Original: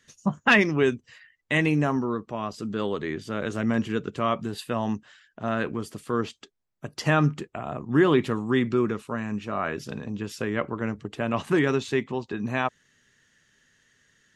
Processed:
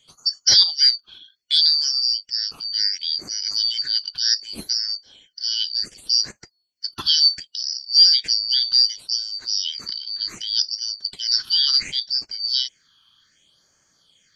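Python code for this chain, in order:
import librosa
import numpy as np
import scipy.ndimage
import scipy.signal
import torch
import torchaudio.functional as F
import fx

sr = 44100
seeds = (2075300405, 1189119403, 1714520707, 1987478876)

y = fx.band_shuffle(x, sr, order='4321')
y = fx.phaser_stages(y, sr, stages=6, low_hz=530.0, high_hz=3400.0, hz=0.67, feedback_pct=25)
y = F.gain(torch.from_numpy(y), 6.5).numpy()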